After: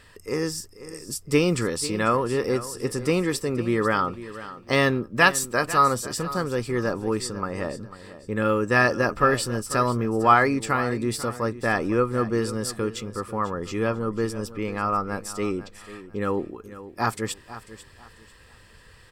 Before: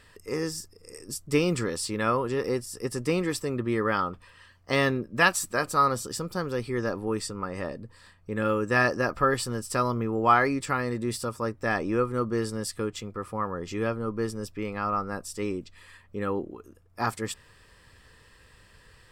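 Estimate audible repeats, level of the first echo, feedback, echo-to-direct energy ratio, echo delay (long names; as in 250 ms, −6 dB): 2, −15.0 dB, 28%, −14.5 dB, 494 ms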